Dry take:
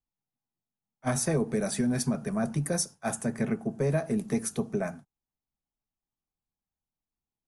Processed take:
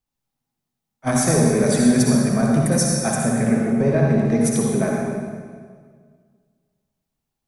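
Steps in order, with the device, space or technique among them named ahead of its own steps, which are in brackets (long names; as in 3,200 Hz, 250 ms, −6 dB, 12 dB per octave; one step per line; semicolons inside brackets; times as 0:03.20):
0:03.22–0:04.41: high-frequency loss of the air 120 metres
stairwell (convolution reverb RT60 1.8 s, pre-delay 52 ms, DRR −2 dB)
level +6.5 dB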